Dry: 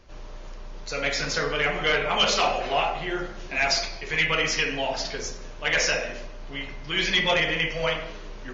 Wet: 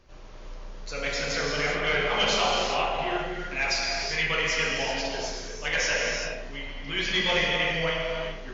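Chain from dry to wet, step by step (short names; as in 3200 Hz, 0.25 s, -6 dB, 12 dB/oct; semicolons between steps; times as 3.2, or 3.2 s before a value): non-linear reverb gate 0.42 s flat, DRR -1 dB; gain -5 dB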